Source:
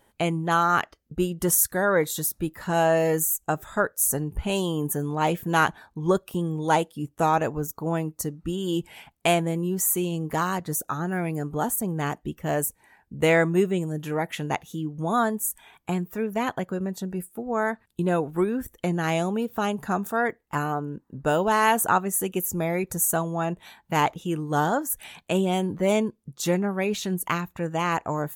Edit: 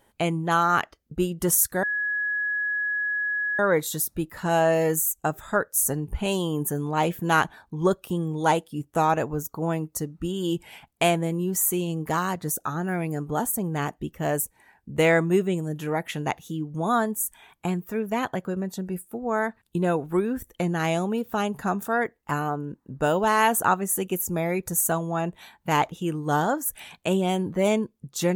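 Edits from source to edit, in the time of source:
1.83 add tone 1680 Hz -23.5 dBFS 1.76 s

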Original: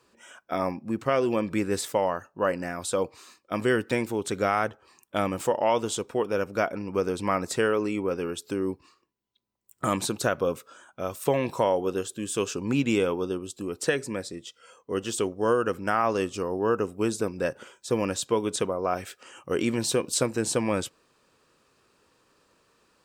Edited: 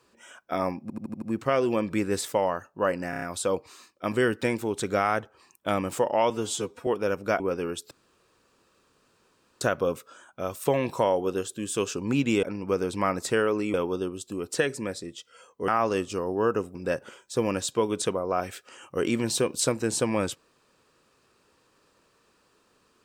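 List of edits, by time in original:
0.82 stutter 0.08 s, 6 plays
2.7 stutter 0.03 s, 5 plays
5.78–6.16 stretch 1.5×
6.69–8 move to 13.03
8.51–10.21 room tone
14.97–15.92 cut
16.99–17.29 cut

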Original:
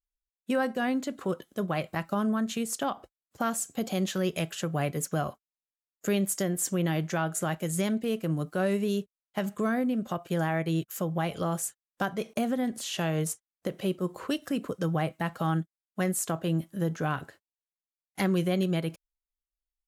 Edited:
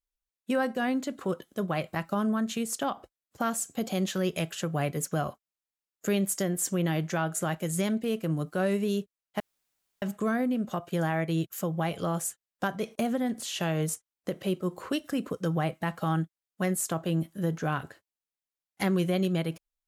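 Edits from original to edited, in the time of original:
9.4 insert room tone 0.62 s

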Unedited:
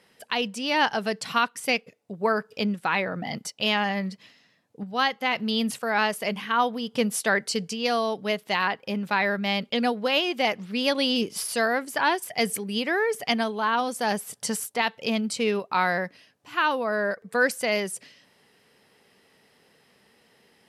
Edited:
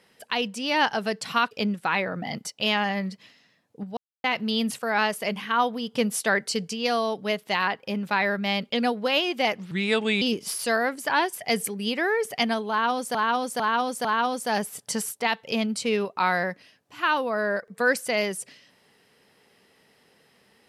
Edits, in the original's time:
1.51–2.51 cut
4.97–5.24 mute
10.71–11.11 speed 79%
13.59–14.04 loop, 4 plays

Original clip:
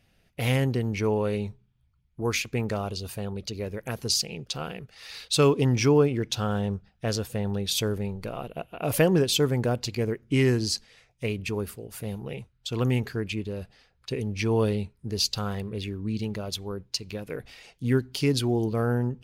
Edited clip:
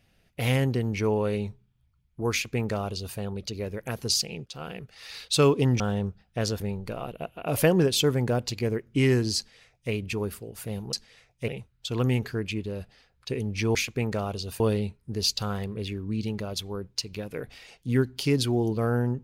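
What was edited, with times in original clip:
2.32–3.17 copy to 14.56
4.46–4.77 fade in, from -13.5 dB
5.8–6.47 cut
7.27–7.96 cut
10.73–11.28 copy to 12.29

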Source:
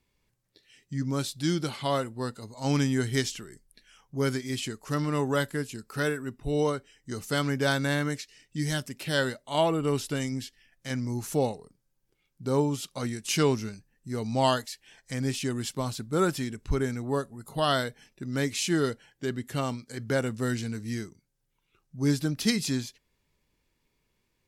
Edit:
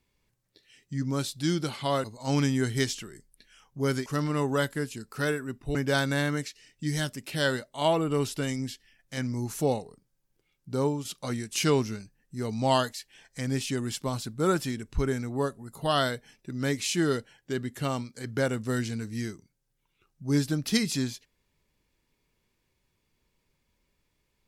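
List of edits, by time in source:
2.04–2.41 cut
4.43–4.84 cut
6.53–7.48 cut
12.47–12.78 fade out, to -6.5 dB

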